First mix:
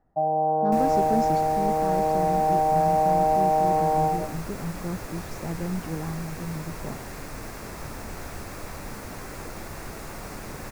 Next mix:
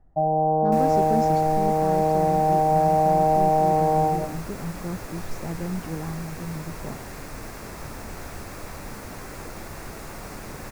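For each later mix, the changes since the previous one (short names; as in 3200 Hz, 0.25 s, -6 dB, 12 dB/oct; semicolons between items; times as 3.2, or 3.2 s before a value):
first sound: add tilt -3 dB/oct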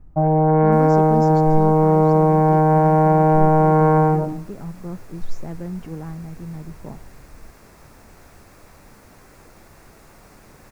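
first sound: remove ladder low-pass 770 Hz, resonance 75%; second sound -10.5 dB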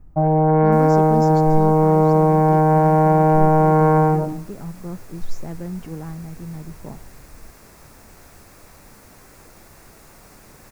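master: add high shelf 4800 Hz +6.5 dB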